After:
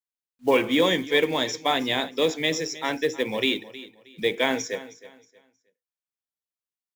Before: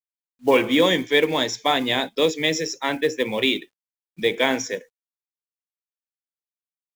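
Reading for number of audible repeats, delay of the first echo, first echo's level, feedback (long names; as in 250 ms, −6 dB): 2, 315 ms, −17.0 dB, 28%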